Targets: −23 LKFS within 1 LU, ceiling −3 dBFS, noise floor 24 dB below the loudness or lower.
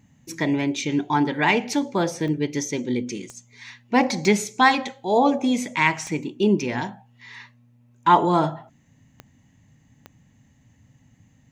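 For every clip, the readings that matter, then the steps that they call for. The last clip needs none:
number of clicks 6; integrated loudness −22.0 LKFS; sample peak −4.0 dBFS; target loudness −23.0 LKFS
→ click removal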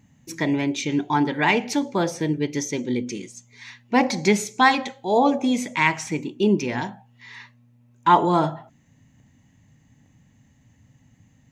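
number of clicks 0; integrated loudness −22.0 LKFS; sample peak −4.0 dBFS; target loudness −23.0 LKFS
→ level −1 dB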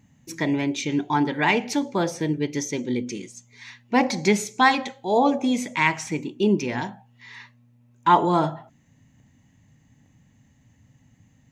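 integrated loudness −23.0 LKFS; sample peak −5.0 dBFS; background noise floor −60 dBFS

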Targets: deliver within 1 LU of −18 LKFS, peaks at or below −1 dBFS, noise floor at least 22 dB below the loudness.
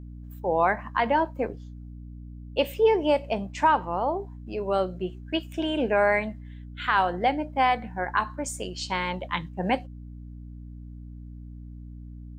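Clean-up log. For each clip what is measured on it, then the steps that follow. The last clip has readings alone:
mains hum 60 Hz; hum harmonics up to 300 Hz; level of the hum −38 dBFS; integrated loudness −26.5 LKFS; sample peak −10.0 dBFS; target loudness −18.0 LKFS
→ mains-hum notches 60/120/180/240/300 Hz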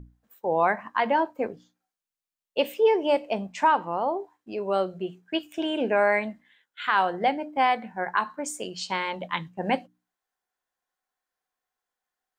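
mains hum none found; integrated loudness −26.5 LKFS; sample peak −10.5 dBFS; target loudness −18.0 LKFS
→ level +8.5 dB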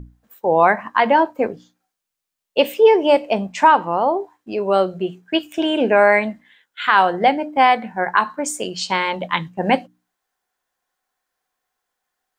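integrated loudness −18.0 LKFS; sample peak −2.0 dBFS; background noise floor −82 dBFS

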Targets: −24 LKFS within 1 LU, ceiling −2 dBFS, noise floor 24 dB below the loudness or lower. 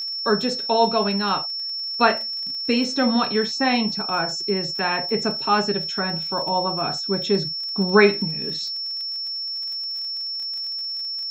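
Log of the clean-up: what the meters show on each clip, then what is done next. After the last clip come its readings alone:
crackle rate 43 per second; interfering tone 5,400 Hz; level of the tone −26 dBFS; integrated loudness −22.0 LKFS; sample peak −2.5 dBFS; target loudness −24.0 LKFS
→ click removal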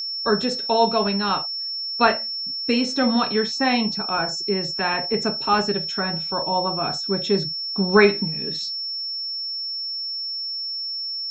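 crackle rate 0.088 per second; interfering tone 5,400 Hz; level of the tone −26 dBFS
→ notch filter 5,400 Hz, Q 30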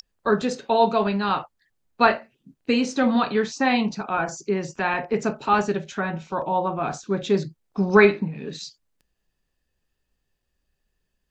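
interfering tone none found; integrated loudness −23.0 LKFS; sample peak −3.0 dBFS; target loudness −24.0 LKFS
→ level −1 dB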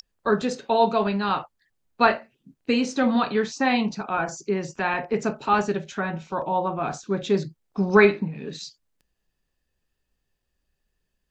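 integrated loudness −24.0 LKFS; sample peak −4.0 dBFS; background noise floor −78 dBFS

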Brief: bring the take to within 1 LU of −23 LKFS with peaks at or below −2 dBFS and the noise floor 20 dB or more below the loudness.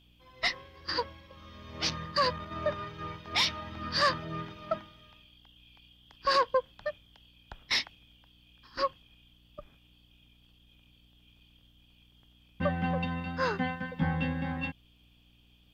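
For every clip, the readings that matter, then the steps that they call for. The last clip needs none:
mains hum 60 Hz; hum harmonics up to 300 Hz; level of the hum −62 dBFS; integrated loudness −32.0 LKFS; sample peak −16.0 dBFS; target loudness −23.0 LKFS
→ hum removal 60 Hz, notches 5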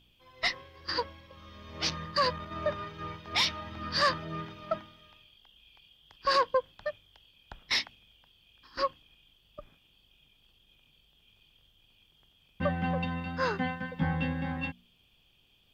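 mains hum none found; integrated loudness −32.0 LKFS; sample peak −16.0 dBFS; target loudness −23.0 LKFS
→ level +9 dB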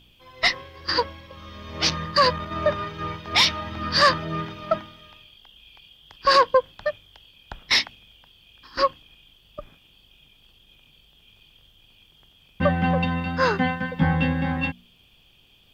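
integrated loudness −23.0 LKFS; sample peak −7.0 dBFS; background noise floor −57 dBFS

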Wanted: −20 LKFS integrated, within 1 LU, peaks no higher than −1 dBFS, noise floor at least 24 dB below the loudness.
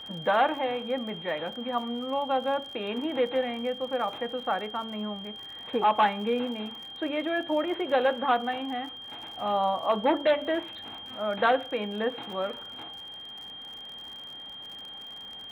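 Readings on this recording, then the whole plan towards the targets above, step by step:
crackle rate 57 per second; interfering tone 3,200 Hz; level of the tone −40 dBFS; integrated loudness −29.0 LKFS; sample peak −12.5 dBFS; target loudness −20.0 LKFS
→ click removal
notch filter 3,200 Hz, Q 30
level +9 dB

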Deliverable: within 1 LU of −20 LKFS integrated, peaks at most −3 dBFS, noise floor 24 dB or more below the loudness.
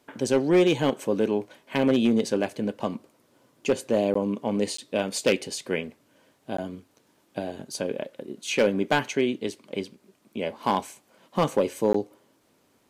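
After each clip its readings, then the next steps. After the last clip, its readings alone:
share of clipped samples 0.4%; peaks flattened at −13.5 dBFS; number of dropouts 4; longest dropout 14 ms; integrated loudness −26.5 LKFS; sample peak −13.5 dBFS; target loudness −20.0 LKFS
→ clipped peaks rebuilt −13.5 dBFS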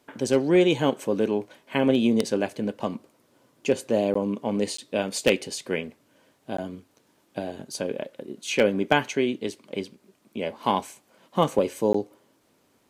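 share of clipped samples 0.0%; number of dropouts 4; longest dropout 14 ms
→ repair the gap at 0:04.14/0:04.77/0:06.57/0:11.93, 14 ms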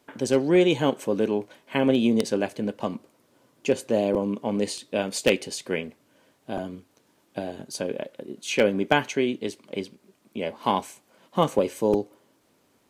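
number of dropouts 0; integrated loudness −26.0 LKFS; sample peak −4.5 dBFS; target loudness −20.0 LKFS
→ level +6 dB
brickwall limiter −3 dBFS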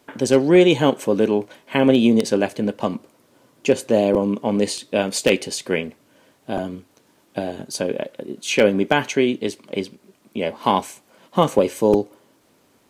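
integrated loudness −20.0 LKFS; sample peak −3.0 dBFS; background noise floor −59 dBFS

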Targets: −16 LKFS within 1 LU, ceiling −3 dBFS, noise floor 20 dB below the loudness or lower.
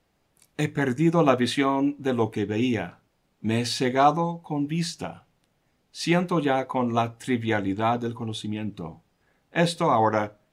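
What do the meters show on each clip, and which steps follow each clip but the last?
integrated loudness −25.0 LKFS; sample peak −7.0 dBFS; target loudness −16.0 LKFS
→ level +9 dB
brickwall limiter −3 dBFS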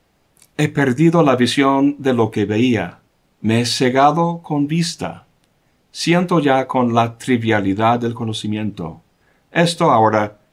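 integrated loudness −16.5 LKFS; sample peak −3.0 dBFS; background noise floor −61 dBFS

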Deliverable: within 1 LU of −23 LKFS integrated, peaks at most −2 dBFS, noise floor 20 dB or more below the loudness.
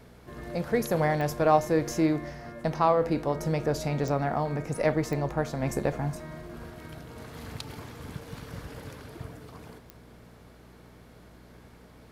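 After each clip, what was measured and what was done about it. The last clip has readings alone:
number of clicks 4; mains hum 60 Hz; hum harmonics up to 240 Hz; level of the hum −51 dBFS; integrated loudness −28.0 LKFS; sample peak −9.5 dBFS; target loudness −23.0 LKFS
→ click removal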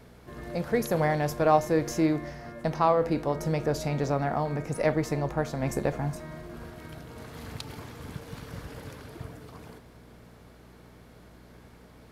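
number of clicks 0; mains hum 60 Hz; hum harmonics up to 240 Hz; level of the hum −51 dBFS
→ hum removal 60 Hz, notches 4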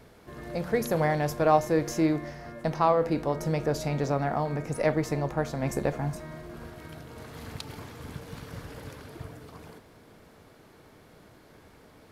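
mains hum none found; integrated loudness −28.0 LKFS; sample peak −9.5 dBFS; target loudness −23.0 LKFS
→ level +5 dB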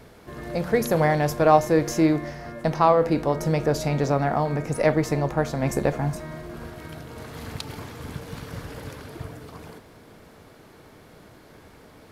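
integrated loudness −23.0 LKFS; sample peak −4.5 dBFS; background noise floor −50 dBFS

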